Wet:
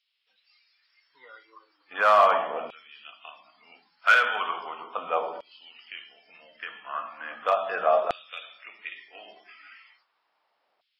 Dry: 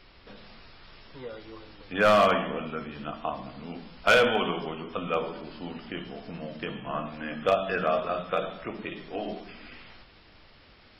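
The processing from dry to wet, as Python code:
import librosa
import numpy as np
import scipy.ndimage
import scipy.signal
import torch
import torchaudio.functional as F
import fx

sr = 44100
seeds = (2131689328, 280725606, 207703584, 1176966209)

y = fx.tilt_shelf(x, sr, db=6.0, hz=970.0)
y = fx.noise_reduce_blind(y, sr, reduce_db=17)
y = fx.filter_lfo_highpass(y, sr, shape='saw_down', hz=0.37, low_hz=700.0, high_hz=3300.0, q=2.3)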